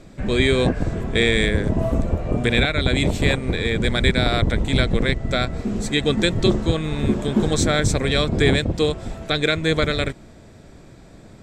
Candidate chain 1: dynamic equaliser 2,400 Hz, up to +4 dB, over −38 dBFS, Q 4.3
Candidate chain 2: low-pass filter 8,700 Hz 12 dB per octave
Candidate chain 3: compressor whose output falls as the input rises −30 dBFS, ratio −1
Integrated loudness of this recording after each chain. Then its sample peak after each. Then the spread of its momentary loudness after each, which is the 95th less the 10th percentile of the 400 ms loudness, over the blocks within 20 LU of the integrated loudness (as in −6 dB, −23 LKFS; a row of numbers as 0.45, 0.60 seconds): −20.0, −20.5, −31.0 LKFS; −2.5, −3.0, −8.5 dBFS; 6, 5, 5 LU